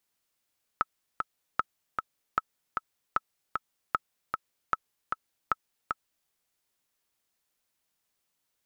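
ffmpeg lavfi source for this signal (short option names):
-f lavfi -i "aevalsrc='pow(10,(-11-4.5*gte(mod(t,2*60/153),60/153))/20)*sin(2*PI*1300*mod(t,60/153))*exp(-6.91*mod(t,60/153)/0.03)':d=5.49:s=44100"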